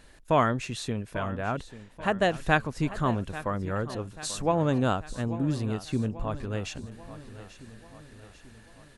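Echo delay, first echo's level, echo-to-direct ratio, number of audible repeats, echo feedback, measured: 0.839 s, -15.0 dB, -13.5 dB, 4, 53%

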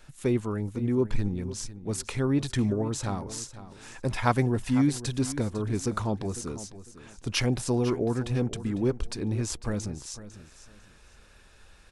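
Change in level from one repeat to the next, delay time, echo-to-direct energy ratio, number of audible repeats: -12.0 dB, 0.501 s, -14.0 dB, 2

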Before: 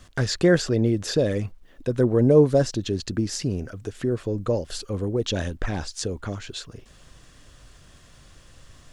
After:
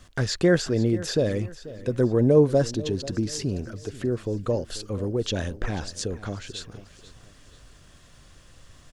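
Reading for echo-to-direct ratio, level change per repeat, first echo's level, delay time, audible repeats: -16.5 dB, -8.0 dB, -17.0 dB, 0.488 s, 3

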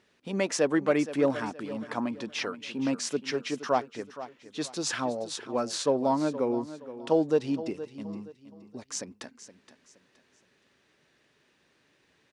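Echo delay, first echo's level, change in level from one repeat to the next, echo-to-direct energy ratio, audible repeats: 0.47 s, -14.0 dB, -9.5 dB, -13.5 dB, 3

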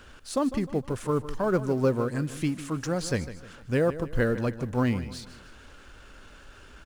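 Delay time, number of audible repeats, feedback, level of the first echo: 0.153 s, 3, 42%, -14.0 dB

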